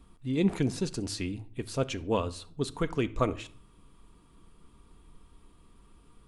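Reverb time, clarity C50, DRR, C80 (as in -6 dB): 0.50 s, 19.0 dB, 9.5 dB, 24.0 dB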